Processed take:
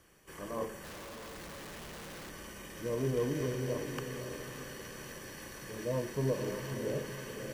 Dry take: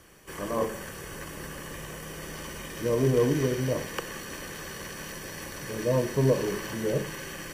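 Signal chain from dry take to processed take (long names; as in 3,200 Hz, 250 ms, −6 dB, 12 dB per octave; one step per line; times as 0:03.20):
feedback delay with all-pass diffusion 564 ms, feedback 43%, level −6.5 dB
0:00.84–0:02.30: comparator with hysteresis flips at −46.5 dBFS
level −9 dB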